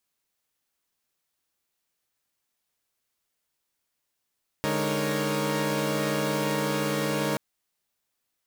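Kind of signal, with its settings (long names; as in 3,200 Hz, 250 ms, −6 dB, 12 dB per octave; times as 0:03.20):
held notes D3/G#3/D#4/A#4/C#5 saw, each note −29 dBFS 2.73 s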